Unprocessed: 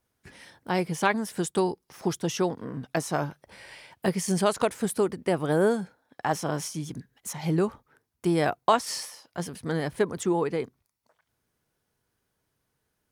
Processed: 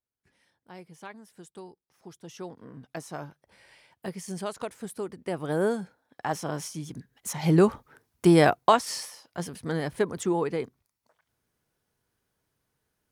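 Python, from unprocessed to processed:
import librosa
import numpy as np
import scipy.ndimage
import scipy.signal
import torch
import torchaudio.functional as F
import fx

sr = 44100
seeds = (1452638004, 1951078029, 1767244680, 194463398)

y = fx.gain(x, sr, db=fx.line((2.06, -19.5), (2.64, -10.0), (4.97, -10.0), (5.62, -3.0), (6.93, -3.0), (7.67, 6.5), (8.38, 6.5), (8.9, -1.0)))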